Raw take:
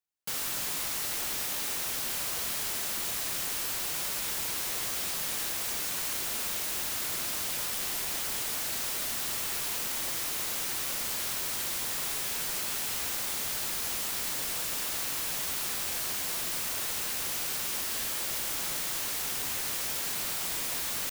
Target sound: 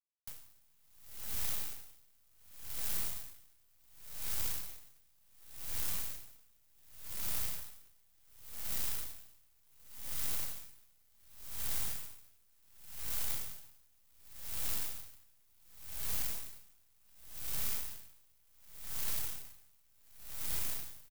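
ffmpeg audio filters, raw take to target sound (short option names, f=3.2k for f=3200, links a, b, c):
-filter_complex "[0:a]asplit=2[a][b];[b]adelay=34,volume=-4.5dB[c];[a][c]amix=inputs=2:normalize=0,acrusher=bits=5:dc=4:mix=0:aa=0.000001,acrossover=split=130[d][e];[e]acompressor=threshold=-49dB:ratio=3[f];[d][f]amix=inputs=2:normalize=0,highshelf=f=11k:g=8,aeval=exprs='val(0)*pow(10,-36*(0.5-0.5*cos(2*PI*0.68*n/s))/20)':c=same,volume=7dB"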